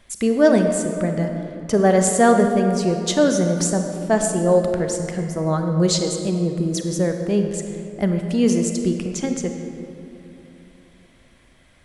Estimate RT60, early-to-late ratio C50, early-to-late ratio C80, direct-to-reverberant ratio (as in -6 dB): 2.9 s, 5.5 dB, 6.0 dB, 4.5 dB